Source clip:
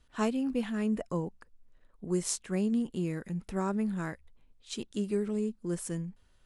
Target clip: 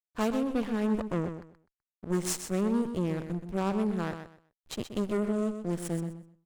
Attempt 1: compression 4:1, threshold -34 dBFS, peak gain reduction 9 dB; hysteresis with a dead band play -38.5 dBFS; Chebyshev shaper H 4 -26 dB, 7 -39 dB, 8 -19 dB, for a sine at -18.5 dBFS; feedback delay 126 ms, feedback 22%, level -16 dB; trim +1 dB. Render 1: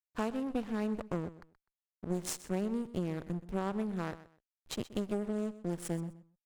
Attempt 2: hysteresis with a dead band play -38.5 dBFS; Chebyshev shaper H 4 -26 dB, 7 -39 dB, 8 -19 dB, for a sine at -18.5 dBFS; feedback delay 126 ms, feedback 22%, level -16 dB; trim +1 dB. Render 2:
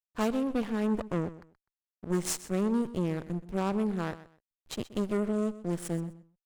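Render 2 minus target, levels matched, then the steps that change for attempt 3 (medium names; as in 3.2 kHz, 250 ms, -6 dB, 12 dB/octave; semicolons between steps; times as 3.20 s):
echo-to-direct -7 dB
change: feedback delay 126 ms, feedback 22%, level -9 dB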